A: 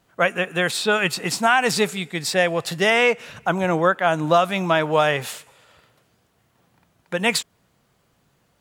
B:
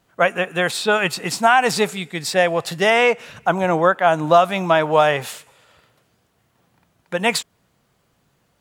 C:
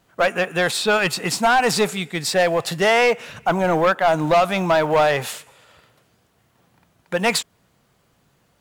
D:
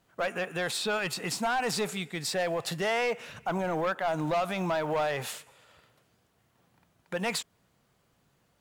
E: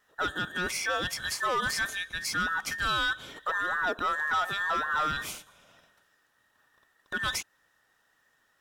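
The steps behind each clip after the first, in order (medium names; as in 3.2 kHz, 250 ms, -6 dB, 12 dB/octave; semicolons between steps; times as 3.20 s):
dynamic bell 780 Hz, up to +5 dB, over -30 dBFS, Q 1.1
in parallel at -11 dB: short-mantissa float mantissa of 2-bit; on the sum: saturation -10.5 dBFS, distortion -11 dB
peak limiter -15.5 dBFS, peak gain reduction 5 dB; trim -7.5 dB
every band turned upside down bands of 2 kHz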